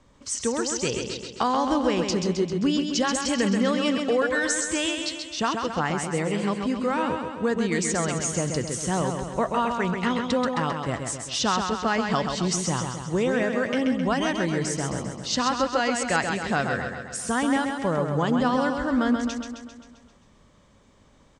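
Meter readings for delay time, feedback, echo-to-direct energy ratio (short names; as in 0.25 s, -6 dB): 0.132 s, 58%, -3.5 dB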